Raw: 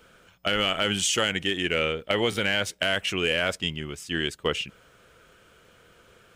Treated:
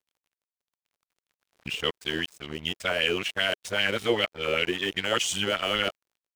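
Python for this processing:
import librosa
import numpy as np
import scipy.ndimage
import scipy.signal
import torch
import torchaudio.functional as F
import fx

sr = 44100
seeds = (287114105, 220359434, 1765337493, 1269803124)

y = np.flip(x).copy()
y = fx.recorder_agc(y, sr, target_db=-19.0, rise_db_per_s=6.4, max_gain_db=30)
y = np.sign(y) * np.maximum(np.abs(y) - 10.0 ** (-38.5 / 20.0), 0.0)
y = fx.dmg_crackle(y, sr, seeds[0], per_s=28.0, level_db=-56.0)
y = fx.bell_lfo(y, sr, hz=5.1, low_hz=370.0, high_hz=3500.0, db=9)
y = y * librosa.db_to_amplitude(-3.0)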